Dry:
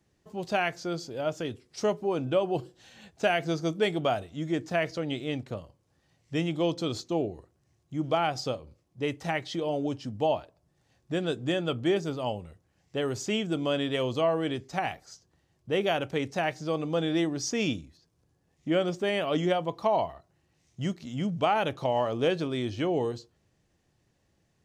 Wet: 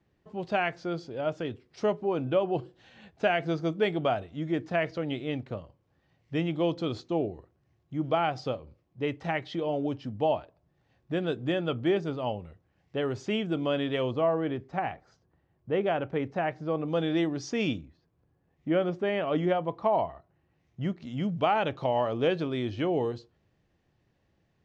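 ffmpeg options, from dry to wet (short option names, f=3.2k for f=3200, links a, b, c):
-af "asetnsamples=n=441:p=0,asendcmd='14.11 lowpass f 1800;16.88 lowpass f 3600;17.78 lowpass f 2200;21.02 lowpass f 3600',lowpass=3.1k"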